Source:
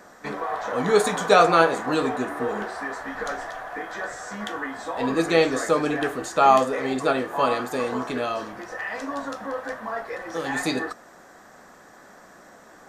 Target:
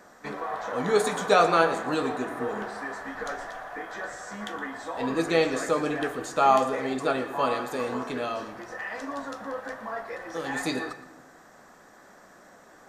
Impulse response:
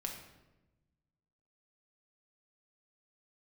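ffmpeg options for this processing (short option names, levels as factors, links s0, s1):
-filter_complex "[0:a]asplit=2[s0][s1];[1:a]atrim=start_sample=2205,adelay=116[s2];[s1][s2]afir=irnorm=-1:irlink=0,volume=0.237[s3];[s0][s3]amix=inputs=2:normalize=0,volume=0.631"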